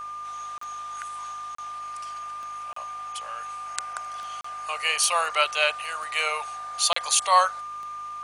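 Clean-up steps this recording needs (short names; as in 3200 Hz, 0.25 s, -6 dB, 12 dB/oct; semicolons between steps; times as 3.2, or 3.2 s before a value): de-click; de-hum 52.2 Hz, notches 25; notch 1200 Hz, Q 30; interpolate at 0.58/1.55/2.73/4.41/6.93, 34 ms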